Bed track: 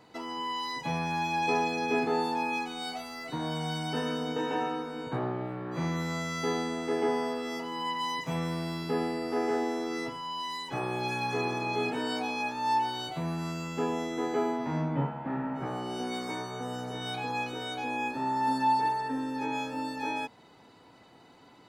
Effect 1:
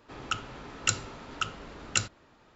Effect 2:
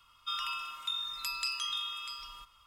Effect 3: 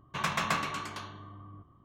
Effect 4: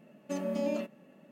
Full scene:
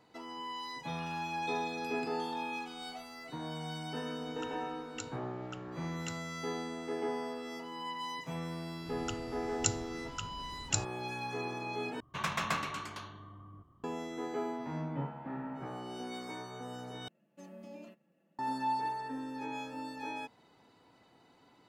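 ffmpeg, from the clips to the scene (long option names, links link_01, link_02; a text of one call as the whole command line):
ffmpeg -i bed.wav -i cue0.wav -i cue1.wav -i cue2.wav -i cue3.wav -filter_complex "[1:a]asplit=2[link_01][link_02];[0:a]volume=-7.5dB[link_03];[2:a]highshelf=frequency=5000:gain=-7[link_04];[link_02]bass=frequency=250:gain=13,treble=frequency=4000:gain=11[link_05];[4:a]aecho=1:1:5.9:0.49[link_06];[link_03]asplit=3[link_07][link_08][link_09];[link_07]atrim=end=12.004[link_10];[3:a]atrim=end=1.84,asetpts=PTS-STARTPTS,volume=-3.5dB[link_11];[link_08]atrim=start=13.836:end=17.084[link_12];[link_06]atrim=end=1.31,asetpts=PTS-STARTPTS,volume=-16.5dB[link_13];[link_09]atrim=start=18.386[link_14];[link_04]atrim=end=2.66,asetpts=PTS-STARTPTS,volume=-16dB,afade=type=in:duration=0.004:curve=hsin,afade=type=out:start_time=2.656:duration=0.004:curve=hsin,adelay=600[link_15];[link_01]atrim=end=2.55,asetpts=PTS-STARTPTS,volume=-17.5dB,afade=type=in:duration=0.004:curve=hsin,afade=type=out:start_time=2.546:duration=0.004:curve=hsin,adelay=4110[link_16];[link_05]atrim=end=2.55,asetpts=PTS-STARTPTS,volume=-12.5dB,afade=type=in:duration=0.004:curve=hsin,afade=type=out:start_time=2.546:duration=0.004:curve=hsin,adelay=8770[link_17];[link_10][link_11]acrossfade=duration=0.004:curve1=hsin:curve2=hsin[link_18];[link_18][link_12]acrossfade=duration=0.004:curve1=hsin:curve2=hsin[link_19];[link_19][link_13]acrossfade=duration=0.004:curve1=hsin:curve2=hsin[link_20];[link_20][link_14]acrossfade=duration=0.004:curve1=hsin:curve2=hsin[link_21];[link_21][link_15][link_16][link_17]amix=inputs=4:normalize=0" out.wav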